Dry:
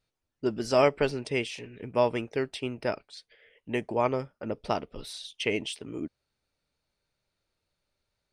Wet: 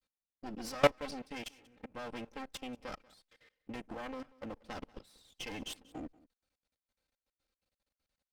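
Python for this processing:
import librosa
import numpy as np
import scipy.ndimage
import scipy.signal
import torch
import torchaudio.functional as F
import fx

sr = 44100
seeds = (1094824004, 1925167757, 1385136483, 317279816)

p1 = fx.lower_of_two(x, sr, delay_ms=3.8)
p2 = fx.cheby_harmonics(p1, sr, harmonics=(7,), levels_db=(-25,), full_scale_db=-12.5)
p3 = fx.level_steps(p2, sr, step_db=22)
p4 = p3 + fx.echo_single(p3, sr, ms=187, db=-22.5, dry=0)
y = p4 * librosa.db_to_amplitude(2.0)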